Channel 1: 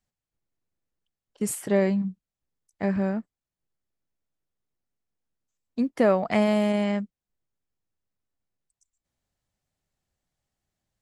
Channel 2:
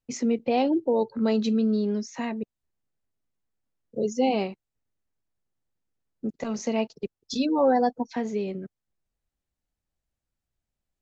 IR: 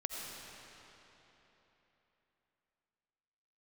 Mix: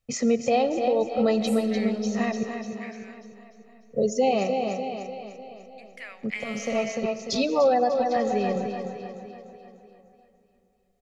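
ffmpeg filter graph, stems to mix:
-filter_complex "[0:a]highpass=f=2.2k:t=q:w=4.1,volume=-12dB,asplit=3[a][b][c];[b]volume=-15.5dB[d];[1:a]aecho=1:1:1.6:0.63,volume=2dB,asplit=3[e][f][g];[f]volume=-9.5dB[h];[g]volume=-6.5dB[i];[c]apad=whole_len=485962[j];[e][j]sidechaincompress=threshold=-43dB:ratio=8:attack=16:release=711[k];[2:a]atrim=start_sample=2205[l];[d][h]amix=inputs=2:normalize=0[m];[m][l]afir=irnorm=-1:irlink=0[n];[i]aecho=0:1:297|594|891|1188|1485|1782|2079|2376:1|0.52|0.27|0.141|0.0731|0.038|0.0198|0.0103[o];[a][k][n][o]amix=inputs=4:normalize=0,alimiter=limit=-13dB:level=0:latency=1:release=369"

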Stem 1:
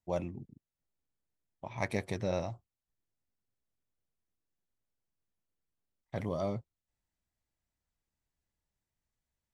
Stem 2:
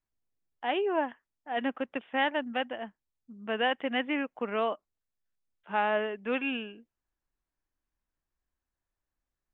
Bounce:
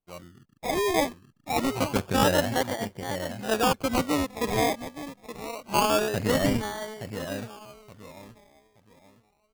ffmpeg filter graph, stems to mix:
-filter_complex "[0:a]lowpass=1.5k,dynaudnorm=f=390:g=7:m=10dB,volume=-9.5dB,asplit=2[a][b];[b]volume=-8dB[c];[1:a]volume=-1.5dB,asplit=2[d][e];[e]volume=-12.5dB[f];[c][f]amix=inputs=2:normalize=0,aecho=0:1:872|1744|2616|3488:1|0.26|0.0676|0.0176[g];[a][d][g]amix=inputs=3:normalize=0,dynaudnorm=f=480:g=3:m=6.5dB,acrusher=samples=24:mix=1:aa=0.000001:lfo=1:lforange=14.4:lforate=0.26"

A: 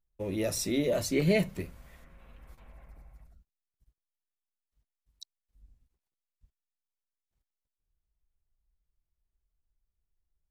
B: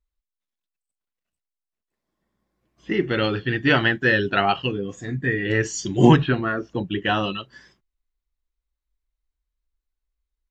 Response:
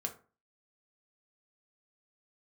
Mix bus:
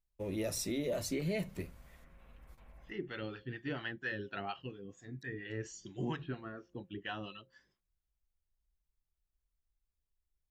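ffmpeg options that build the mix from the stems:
-filter_complex "[0:a]volume=-4.5dB[a];[1:a]bandreject=f=176.3:t=h:w=4,bandreject=f=352.6:t=h:w=4,bandreject=f=528.9:t=h:w=4,acrossover=split=610[b][c];[b]aeval=exprs='val(0)*(1-0.7/2+0.7/2*cos(2*PI*4.3*n/s))':c=same[d];[c]aeval=exprs='val(0)*(1-0.7/2-0.7/2*cos(2*PI*4.3*n/s))':c=same[e];[d][e]amix=inputs=2:normalize=0,volume=-16.5dB,asplit=2[f][g];[g]apad=whole_len=463399[h];[a][h]sidechaincompress=threshold=-58dB:ratio=8:attack=16:release=140[i];[i][f]amix=inputs=2:normalize=0,alimiter=level_in=3dB:limit=-24dB:level=0:latency=1:release=147,volume=-3dB"

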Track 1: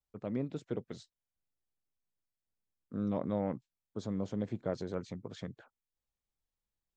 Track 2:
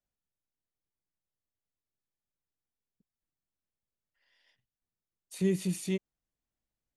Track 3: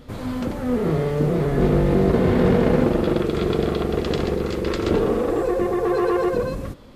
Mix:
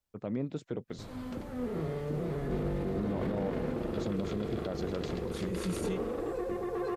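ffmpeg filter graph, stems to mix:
-filter_complex "[0:a]volume=3dB,asplit=2[a][b];[1:a]volume=-3.5dB[c];[2:a]adelay=900,volume=-13.5dB[d];[b]apad=whole_len=307093[e];[c][e]sidechaincompress=threshold=-46dB:ratio=8:attack=16:release=110[f];[a][f][d]amix=inputs=3:normalize=0,alimiter=limit=-24dB:level=0:latency=1:release=41"

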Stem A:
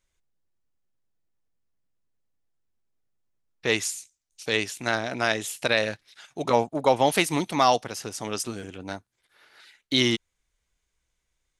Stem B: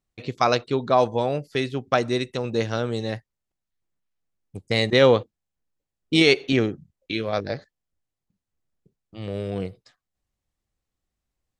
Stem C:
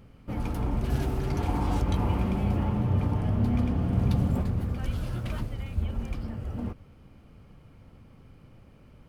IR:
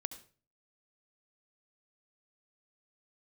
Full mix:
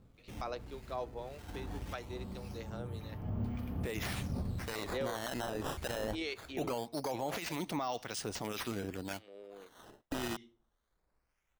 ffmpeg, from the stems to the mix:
-filter_complex "[0:a]adelay=200,volume=-1dB,asplit=2[a][b];[b]volume=-21.5dB[c];[1:a]highpass=f=300:w=0.5412,highpass=f=300:w=1.3066,volume=-18.5dB,asplit=2[d][e];[2:a]volume=-9dB[f];[e]apad=whole_len=400773[g];[f][g]sidechaincompress=threshold=-47dB:ratio=8:attack=47:release=800[h];[a][h]amix=inputs=2:normalize=0,acrusher=samples=11:mix=1:aa=0.000001:lfo=1:lforange=17.6:lforate=0.22,acompressor=threshold=-25dB:ratio=6,volume=0dB[i];[3:a]atrim=start_sample=2205[j];[c][j]afir=irnorm=-1:irlink=0[k];[d][i][k]amix=inputs=3:normalize=0,acrossover=split=1300[l][m];[l]aeval=exprs='val(0)*(1-0.5/2+0.5/2*cos(2*PI*1.8*n/s))':c=same[n];[m]aeval=exprs='val(0)*(1-0.5/2-0.5/2*cos(2*PI*1.8*n/s))':c=same[o];[n][o]amix=inputs=2:normalize=0,alimiter=level_in=3dB:limit=-24dB:level=0:latency=1:release=19,volume=-3dB"

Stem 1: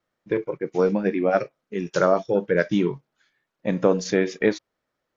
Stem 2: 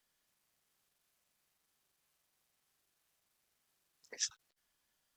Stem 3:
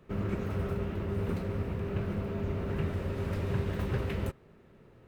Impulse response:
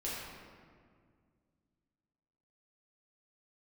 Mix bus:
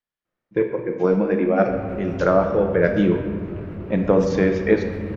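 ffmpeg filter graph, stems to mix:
-filter_complex "[0:a]adelay=250,volume=-1.5dB,asplit=2[a][b];[b]volume=-4.5dB[c];[1:a]volume=-2.5dB[d];[2:a]asoftclip=type=tanh:threshold=-26dB,adelay=1600,volume=0dB[e];[3:a]atrim=start_sample=2205[f];[c][f]afir=irnorm=-1:irlink=0[g];[a][d][e][g]amix=inputs=4:normalize=0,agate=range=-6dB:threshold=-42dB:ratio=16:detection=peak,bass=f=250:g=2,treble=f=4k:g=-12"

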